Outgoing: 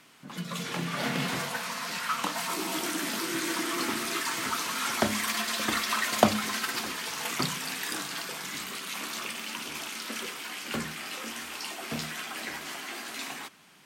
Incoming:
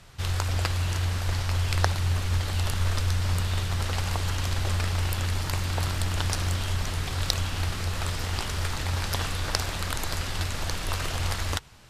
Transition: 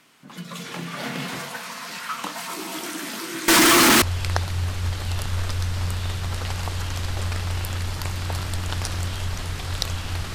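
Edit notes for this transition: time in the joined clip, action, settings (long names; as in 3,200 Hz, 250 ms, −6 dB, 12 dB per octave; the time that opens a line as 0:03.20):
outgoing
0:03.48–0:04.02: fuzz pedal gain 44 dB, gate −50 dBFS
0:04.02: continue with incoming from 0:01.50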